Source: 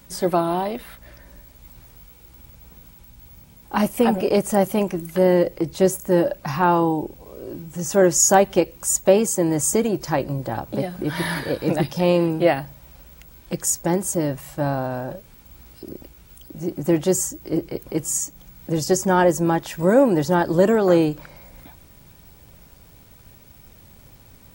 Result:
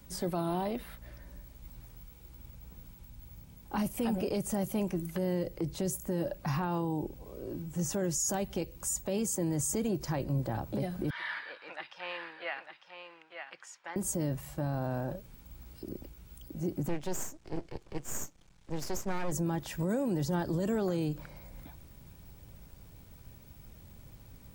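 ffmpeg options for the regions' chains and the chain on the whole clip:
ffmpeg -i in.wav -filter_complex "[0:a]asettb=1/sr,asplit=3[link_01][link_02][link_03];[link_01]atrim=end=11.104[link_04];[link_02]atrim=start=11.1:end=13.96,asetpts=PTS-STARTPTS,afade=type=in:duration=0.004:curve=qsin,afade=type=out:start_time=2.856:duration=0.004:curve=qsin,asuperpass=centerf=1900:order=4:qfactor=0.89,aecho=1:1:901:0.398,atrim=end_sample=126126[link_05];[link_03]atrim=start=13.956[link_06];[link_04][link_05]acrossfade=duration=0.004:curve1=hsin:curve2=qsin[link_07];[link_07][link_06]acrossfade=duration=0.004:curve1=qsin:curve2=hsin,asettb=1/sr,asplit=3[link_08][link_09][link_10];[link_08]atrim=end=16.884[link_11];[link_09]atrim=start=16.88:end=19.32,asetpts=PTS-STARTPTS,afade=type=in:duration=0.004:curve=qsin,afade=type=out:start_time=2.436:duration=0.004:curve=qsin,lowpass=frequency=8000:width=0.5412,lowpass=frequency=8000:width=1.3066,lowshelf=frequency=370:gain=-10,aeval=exprs='max(val(0),0)':channel_layout=same[link_12];[link_10]atrim=start=19.316[link_13];[link_11][link_12]acrossfade=duration=0.004:curve1=hsin:curve2=qsin[link_14];[link_14][link_13]acrossfade=duration=0.004:curve1=qsin:curve2=hsin,lowshelf=frequency=260:gain=7,acrossover=split=160|3000[link_15][link_16][link_17];[link_16]acompressor=threshold=-20dB:ratio=6[link_18];[link_15][link_18][link_17]amix=inputs=3:normalize=0,alimiter=limit=-15dB:level=0:latency=1:release=16,volume=-8.5dB" out.wav

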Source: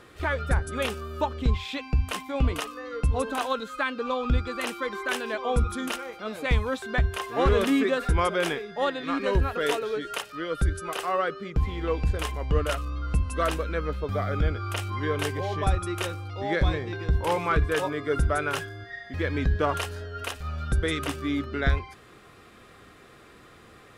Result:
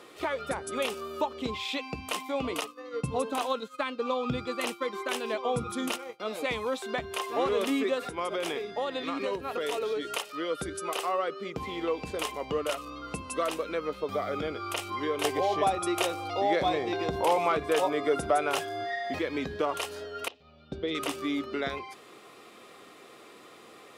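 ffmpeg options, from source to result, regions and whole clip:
ffmpeg -i in.wav -filter_complex "[0:a]asettb=1/sr,asplit=3[link_01][link_02][link_03];[link_01]atrim=end=2.614[link_04];[link_02]atrim=start=2.61:end=6.2,asetpts=PTS-STARTPTS,afade=type=in:duration=0.004:curve=qsin,afade=type=out:start_time=3.586:duration=0.004:curve=qsin,agate=range=-33dB:threshold=-32dB:ratio=3:release=100:detection=peak,equalizer=frequency=130:width_type=o:width=0.95:gain=14.5[link_05];[link_03]atrim=start=6.196[link_06];[link_04][link_05]acrossfade=duration=0.004:curve1=hsin:curve2=qsin[link_07];[link_07][link_06]acrossfade=duration=0.004:curve1=qsin:curve2=hsin,asettb=1/sr,asplit=3[link_08][link_09][link_10];[link_08]atrim=end=8.004[link_11];[link_09]atrim=start=8:end=10.16,asetpts=PTS-STARTPTS,afade=type=in:duration=0.004:curve=qsin,afade=type=out:start_time=2.156:duration=0.004:curve=qsin,acompressor=threshold=-26dB:ratio=6:attack=3.2:release=140:knee=1:detection=peak,aeval=exprs='val(0)+0.00708*(sin(2*PI*60*n/s)+sin(2*PI*2*60*n/s)/2+sin(2*PI*3*60*n/s)/3+sin(2*PI*4*60*n/s)/4+sin(2*PI*5*60*n/s)/5)':channel_layout=same[link_12];[link_10]atrim=start=10.156[link_13];[link_11][link_12]acrossfade=duration=0.004:curve1=hsin:curve2=qsin[link_14];[link_14][link_13]acrossfade=duration=0.004:curve1=qsin:curve2=hsin,asettb=1/sr,asplit=3[link_15][link_16][link_17];[link_15]atrim=end=15.244[link_18];[link_16]atrim=start=15.24:end=19.19,asetpts=PTS-STARTPTS,afade=type=in:duration=0.004:curve=qsin,afade=type=out:start_time=3.946:duration=0.004:curve=qsin,equalizer=frequency=710:width_type=o:width=0.31:gain=9,acontrast=62,asoftclip=type=hard:threshold=-7.5dB[link_19];[link_17]atrim=start=19.186[link_20];[link_18][link_19]acrossfade=duration=0.004:curve1=hsin:curve2=qsin[link_21];[link_21][link_20]acrossfade=duration=0.004:curve1=qsin:curve2=hsin,asettb=1/sr,asplit=3[link_22][link_23][link_24];[link_22]atrim=end=20.284[link_25];[link_23]atrim=start=20.28:end=20.95,asetpts=PTS-STARTPTS,afade=type=in:duration=0.004:curve=qsin,afade=type=out:start_time=0.666:duration=0.004:curve=qsin,lowpass=frequency=4000:width=0.5412,lowpass=frequency=4000:width=1.3066,agate=range=-10dB:threshold=-30dB:ratio=16:release=100:detection=peak,equalizer=frequency=1400:width=0.77:gain=-12.5[link_26];[link_24]atrim=start=20.946[link_27];[link_25][link_26]acrossfade=duration=0.004:curve1=hsin:curve2=qsin[link_28];[link_28][link_27]acrossfade=duration=0.004:curve1=qsin:curve2=hsin,highpass=300,acompressor=threshold=-31dB:ratio=2,equalizer=frequency=1600:width_type=o:width=0.44:gain=-9,volume=3dB" out.wav

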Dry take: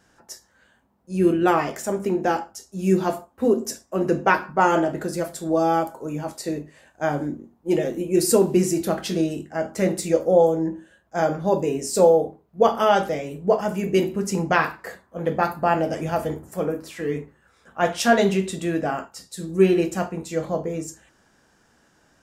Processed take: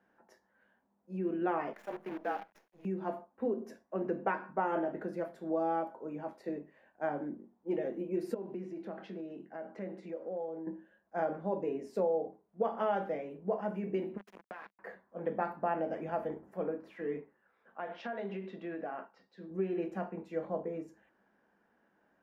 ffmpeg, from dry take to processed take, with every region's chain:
ffmpeg -i in.wav -filter_complex "[0:a]asettb=1/sr,asplit=3[link_01][link_02][link_03];[link_01]atrim=end=1.734[link_04];[link_02]atrim=start=1.73:end=2.85,asetpts=PTS-STARTPTS,afade=type=in:duration=0.004:curve=qsin,afade=type=out:start_time=1.116:duration=0.004:curve=qsin,afreqshift=-31,highpass=frequency=730:poles=1,acrusher=bits=6:dc=4:mix=0:aa=0.000001[link_05];[link_03]atrim=start=2.846[link_06];[link_04][link_05]acrossfade=duration=0.004:curve1=hsin:curve2=qsin[link_07];[link_07][link_06]acrossfade=duration=0.004:curve1=qsin:curve2=hsin,asettb=1/sr,asplit=3[link_08][link_09][link_10];[link_08]atrim=end=8.344[link_11];[link_09]atrim=start=8.34:end=10.67,asetpts=PTS-STARTPTS,afade=type=in:duration=0.004:curve=qsin,afade=type=out:start_time=2.326:duration=0.004:curve=qsin,acompressor=threshold=-30dB:ratio=3:attack=3.2:release=140:knee=1:detection=peak,highpass=140,lowpass=5700[link_12];[link_10]atrim=start=10.666[link_13];[link_11][link_12]acrossfade=duration=0.004:curve1=hsin:curve2=qsin[link_14];[link_14][link_13]acrossfade=duration=0.004:curve1=qsin:curve2=hsin,asettb=1/sr,asplit=3[link_15][link_16][link_17];[link_15]atrim=end=14.174[link_18];[link_16]atrim=start=14.17:end=14.79,asetpts=PTS-STARTPTS,afade=type=in:duration=0.004:curve=qsin,afade=type=out:start_time=0.616:duration=0.004:curve=qsin,highpass=frequency=810:poles=1,acrusher=bits=3:mix=0:aa=0.5,acompressor=threshold=-30dB:ratio=16:attack=3.2:release=140:knee=1:detection=peak[link_19];[link_17]atrim=start=14.786[link_20];[link_18][link_19]acrossfade=duration=0.004:curve1=hsin:curve2=qsin[link_21];[link_21][link_20]acrossfade=duration=0.004:curve1=qsin:curve2=hsin,asettb=1/sr,asplit=3[link_22][link_23][link_24];[link_22]atrim=end=17.204[link_25];[link_23]atrim=start=17.2:end=19.51,asetpts=PTS-STARTPTS,afade=type=in:duration=0.004:curve=qsin,afade=type=out:start_time=2.306:duration=0.004:curve=qsin,lowpass=frequency=5200:width=0.5412,lowpass=frequency=5200:width=1.3066,lowshelf=frequency=220:gain=-9,acompressor=threshold=-24dB:ratio=16:attack=3.2:release=140:knee=1:detection=peak[link_26];[link_24]atrim=start=19.506[link_27];[link_25][link_26]acrossfade=duration=0.004:curve1=hsin:curve2=qsin[link_28];[link_28][link_27]acrossfade=duration=0.004:curve1=qsin:curve2=hsin,equalizer=frequency=200:width_type=o:width=0.33:gain=10,equalizer=frequency=1250:width_type=o:width=0.33:gain=-4,equalizer=frequency=8000:width_type=o:width=0.33:gain=-9,acompressor=threshold=-17dB:ratio=6,acrossover=split=260 2300:gain=0.178 1 0.0631[link_29][link_30][link_31];[link_29][link_30][link_31]amix=inputs=3:normalize=0,volume=-9dB" out.wav

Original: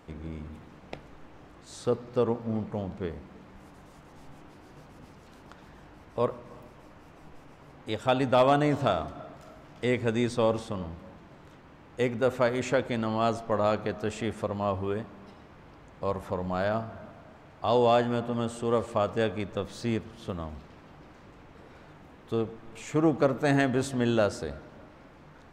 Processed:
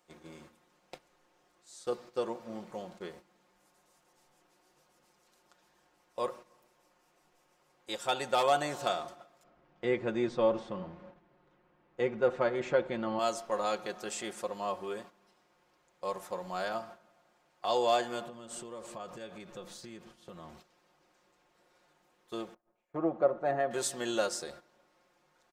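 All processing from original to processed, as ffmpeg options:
ffmpeg -i in.wav -filter_complex "[0:a]asettb=1/sr,asplit=3[link_01][link_02][link_03];[link_01]atrim=end=9.434[link_04];[link_02]atrim=start=9.43:end=13.19,asetpts=PTS-STARTPTS,afade=type=in:duration=0.004:curve=qsin,afade=type=out:start_time=3.756:duration=0.004:curve=qsin,lowpass=2400,lowshelf=frequency=320:gain=10.5[link_05];[link_03]atrim=start=13.186[link_06];[link_04][link_05]acrossfade=duration=0.004:curve1=hsin:curve2=qsin[link_07];[link_07][link_06]acrossfade=duration=0.004:curve1=qsin:curve2=hsin,asettb=1/sr,asplit=3[link_08][link_09][link_10];[link_08]atrim=end=18.264[link_11];[link_09]atrim=start=18.26:end=20.57,asetpts=PTS-STARTPTS,afade=type=in:duration=0.004:curve=qsin,afade=type=out:start_time=2.306:duration=0.004:curve=qsin,bass=frequency=250:gain=7,treble=frequency=4000:gain=-4,acompressor=threshold=-30dB:ratio=16:attack=3.2:release=140:knee=1:detection=peak[link_12];[link_10]atrim=start=20.566[link_13];[link_11][link_12]acrossfade=duration=0.004:curve1=hsin:curve2=qsin[link_14];[link_14][link_13]acrossfade=duration=0.004:curve1=qsin:curve2=hsin,asettb=1/sr,asplit=3[link_15][link_16][link_17];[link_15]atrim=end=22.544[link_18];[link_16]atrim=start=22.54:end=23.71,asetpts=PTS-STARTPTS,afade=type=in:duration=0.004:curve=qsin,afade=type=out:start_time=1.166:duration=0.004:curve=qsin,lowpass=1200,agate=range=-33dB:threshold=-39dB:ratio=3:release=100:detection=peak,equalizer=frequency=630:width=4:gain=6.5[link_19];[link_17]atrim=start=23.706[link_20];[link_18][link_19]acrossfade=duration=0.004:curve1=hsin:curve2=qsin[link_21];[link_21][link_20]acrossfade=duration=0.004:curve1=qsin:curve2=hsin,agate=range=-11dB:threshold=-40dB:ratio=16:detection=peak,bass=frequency=250:gain=-15,treble=frequency=4000:gain=12,aecho=1:1:5.6:0.65,volume=-6dB" out.wav

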